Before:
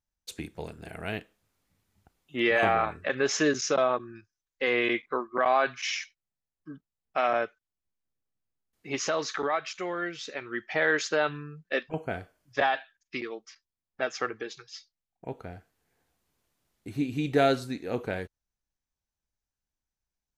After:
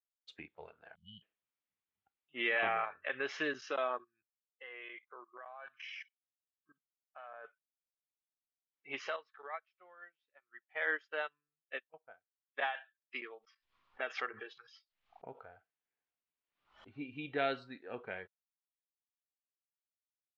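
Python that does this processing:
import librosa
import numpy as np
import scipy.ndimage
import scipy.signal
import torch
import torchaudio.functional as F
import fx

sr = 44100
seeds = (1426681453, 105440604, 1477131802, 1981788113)

y = fx.spec_erase(x, sr, start_s=0.95, length_s=0.27, low_hz=230.0, high_hz=2900.0)
y = fx.level_steps(y, sr, step_db=20, at=(4.03, 7.44), fade=0.02)
y = fx.upward_expand(y, sr, threshold_db=-41.0, expansion=2.5, at=(9.16, 12.75))
y = fx.pre_swell(y, sr, db_per_s=88.0, at=(13.33, 16.92))
y = scipy.signal.sosfilt(scipy.signal.butter(4, 3100.0, 'lowpass', fs=sr, output='sos'), y)
y = fx.noise_reduce_blind(y, sr, reduce_db=12)
y = fx.tilt_eq(y, sr, slope=3.5)
y = F.gain(torch.from_numpy(y), -9.0).numpy()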